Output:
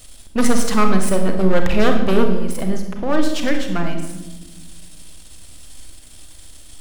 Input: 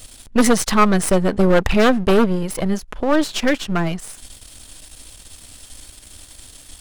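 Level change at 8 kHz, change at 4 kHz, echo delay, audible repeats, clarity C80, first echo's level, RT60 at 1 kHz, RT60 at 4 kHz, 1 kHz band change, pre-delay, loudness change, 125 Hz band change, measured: −3.0 dB, −3.0 dB, no echo audible, no echo audible, 9.0 dB, no echo audible, 0.95 s, 0.75 s, −3.0 dB, 3 ms, −2.0 dB, −1.5 dB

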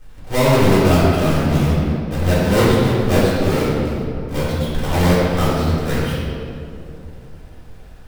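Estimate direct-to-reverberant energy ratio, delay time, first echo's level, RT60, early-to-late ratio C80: −9.5 dB, no echo audible, no echo audible, 2.8 s, −0.5 dB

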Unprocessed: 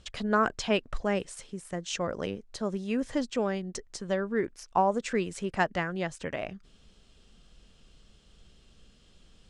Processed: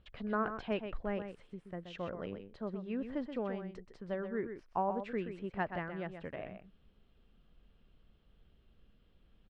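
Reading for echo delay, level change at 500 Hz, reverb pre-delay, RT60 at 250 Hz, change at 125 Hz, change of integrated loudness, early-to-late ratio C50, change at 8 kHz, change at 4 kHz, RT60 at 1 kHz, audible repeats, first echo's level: 127 ms, −8.0 dB, no reverb audible, no reverb audible, −7.5 dB, −8.5 dB, no reverb audible, below −30 dB, −15.5 dB, no reverb audible, 1, −8.5 dB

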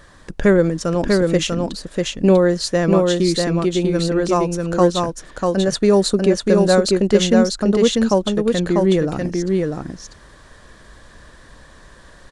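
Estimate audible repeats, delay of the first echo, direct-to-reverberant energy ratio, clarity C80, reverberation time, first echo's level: 1, 644 ms, no reverb audible, no reverb audible, no reverb audible, −3.0 dB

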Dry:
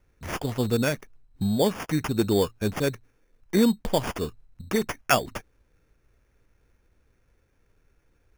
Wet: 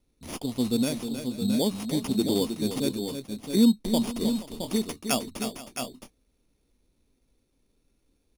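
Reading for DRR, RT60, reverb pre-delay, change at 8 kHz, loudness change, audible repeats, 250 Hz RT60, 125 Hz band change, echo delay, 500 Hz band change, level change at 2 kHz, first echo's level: no reverb audible, no reverb audible, no reverb audible, +1.5 dB, −1.5 dB, 3, no reverb audible, −5.0 dB, 313 ms, −4.5 dB, −9.5 dB, −9.0 dB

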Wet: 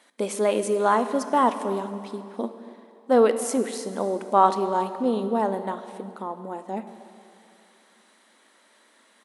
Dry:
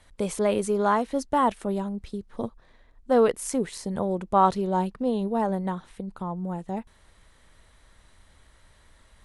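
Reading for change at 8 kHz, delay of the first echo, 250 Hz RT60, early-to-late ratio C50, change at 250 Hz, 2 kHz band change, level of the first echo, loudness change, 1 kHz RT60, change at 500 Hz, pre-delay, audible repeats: +2.5 dB, 275 ms, 2.7 s, 10.5 dB, −0.5 dB, +2.5 dB, −20.5 dB, +2.0 dB, 2.7 s, +2.5 dB, 7 ms, 1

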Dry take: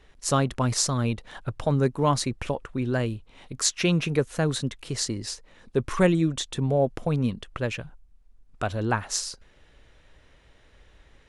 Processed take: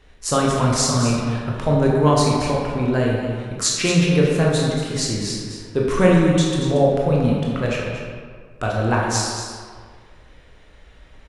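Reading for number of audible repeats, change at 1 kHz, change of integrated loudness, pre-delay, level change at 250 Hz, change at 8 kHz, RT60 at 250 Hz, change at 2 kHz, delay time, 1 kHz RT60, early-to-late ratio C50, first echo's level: 1, +7.0 dB, +7.0 dB, 16 ms, +7.5 dB, +5.0 dB, 1.7 s, +6.5 dB, 231 ms, 1.8 s, −0.5 dB, −9.0 dB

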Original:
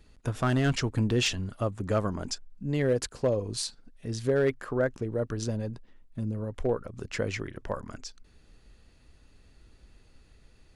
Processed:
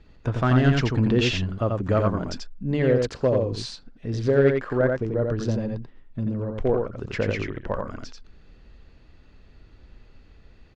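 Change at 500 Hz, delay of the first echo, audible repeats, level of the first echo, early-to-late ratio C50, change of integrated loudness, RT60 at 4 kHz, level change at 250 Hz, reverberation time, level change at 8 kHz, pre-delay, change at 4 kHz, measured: +6.0 dB, 87 ms, 1, −3.5 dB, no reverb audible, +6.0 dB, no reverb audible, +6.5 dB, no reverb audible, can't be measured, no reverb audible, +2.0 dB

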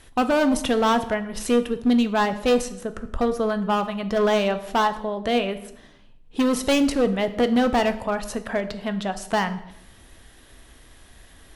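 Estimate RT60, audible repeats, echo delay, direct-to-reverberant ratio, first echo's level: 0.80 s, no echo audible, no echo audible, 9.5 dB, no echo audible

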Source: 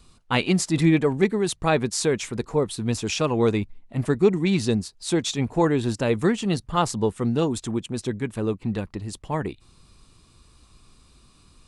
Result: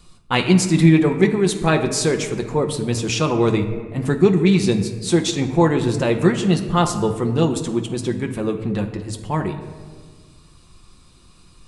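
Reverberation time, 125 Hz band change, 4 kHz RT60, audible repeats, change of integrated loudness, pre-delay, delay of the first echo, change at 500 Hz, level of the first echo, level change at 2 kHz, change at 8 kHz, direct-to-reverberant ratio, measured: 1.6 s, +6.0 dB, 0.85 s, no echo audible, +5.0 dB, 6 ms, no echo audible, +4.0 dB, no echo audible, +4.5 dB, +4.0 dB, 4.0 dB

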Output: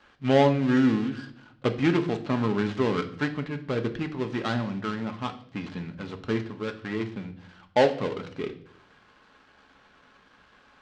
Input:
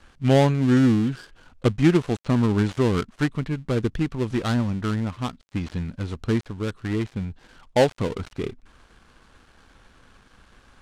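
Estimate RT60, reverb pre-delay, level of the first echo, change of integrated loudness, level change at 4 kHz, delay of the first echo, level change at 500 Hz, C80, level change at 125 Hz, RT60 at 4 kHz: 0.65 s, 4 ms, no echo audible, −3.5 dB, −2.0 dB, no echo audible, −1.5 dB, 17.0 dB, −8.0 dB, 0.55 s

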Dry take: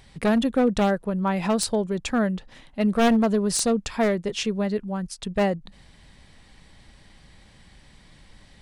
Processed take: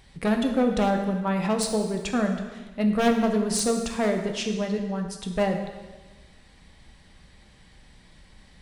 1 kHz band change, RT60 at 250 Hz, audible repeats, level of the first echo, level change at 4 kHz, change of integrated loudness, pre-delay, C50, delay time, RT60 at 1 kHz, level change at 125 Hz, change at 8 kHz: −1.0 dB, 1.3 s, no echo audible, no echo audible, −1.5 dB, −1.5 dB, 4 ms, 6.5 dB, no echo audible, 1.3 s, −1.0 dB, −1.5 dB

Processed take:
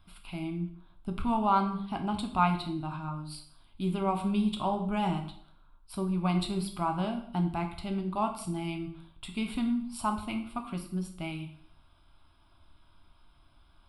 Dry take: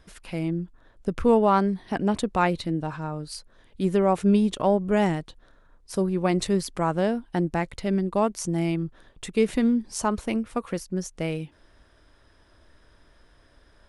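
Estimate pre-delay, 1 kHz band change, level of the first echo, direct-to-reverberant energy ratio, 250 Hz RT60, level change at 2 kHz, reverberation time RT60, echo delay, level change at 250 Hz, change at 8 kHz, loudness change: 4 ms, −3.0 dB, no echo audible, 4.0 dB, 0.60 s, −7.5 dB, 0.65 s, no echo audible, −6.5 dB, −10.5 dB, −6.5 dB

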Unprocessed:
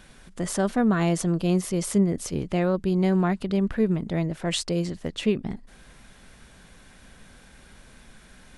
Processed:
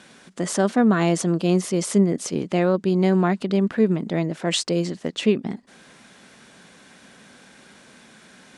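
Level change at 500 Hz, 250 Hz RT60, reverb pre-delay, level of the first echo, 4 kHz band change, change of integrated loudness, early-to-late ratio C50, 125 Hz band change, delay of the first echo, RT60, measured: +4.5 dB, no reverb audible, no reverb audible, no echo audible, +4.5 dB, +3.5 dB, no reverb audible, +1.5 dB, no echo audible, no reverb audible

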